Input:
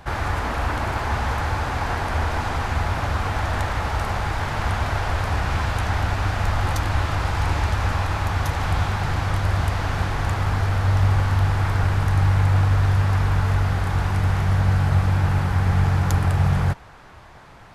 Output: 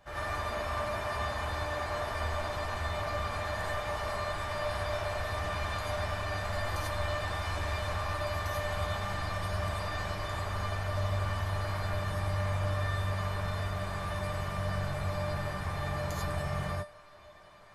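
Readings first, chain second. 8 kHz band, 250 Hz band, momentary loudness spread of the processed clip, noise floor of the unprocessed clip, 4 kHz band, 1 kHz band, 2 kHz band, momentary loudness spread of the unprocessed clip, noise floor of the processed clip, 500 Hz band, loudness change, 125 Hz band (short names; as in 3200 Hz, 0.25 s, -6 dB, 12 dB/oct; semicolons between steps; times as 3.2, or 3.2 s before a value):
-8.5 dB, -13.0 dB, 3 LU, -44 dBFS, -6.5 dB, -9.5 dB, -8.5 dB, 6 LU, -52 dBFS, -3.5 dB, -11.5 dB, -15.0 dB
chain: low shelf 110 Hz -7 dB; resonator 600 Hz, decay 0.23 s, harmonics all, mix 90%; non-linear reverb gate 0.12 s rising, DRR -6 dB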